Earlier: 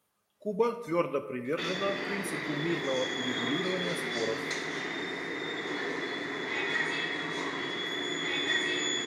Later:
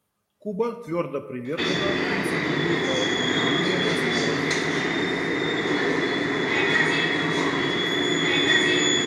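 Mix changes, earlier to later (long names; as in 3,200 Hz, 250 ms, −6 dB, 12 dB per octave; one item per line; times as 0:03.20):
background +9.0 dB
master: add low-shelf EQ 240 Hz +9.5 dB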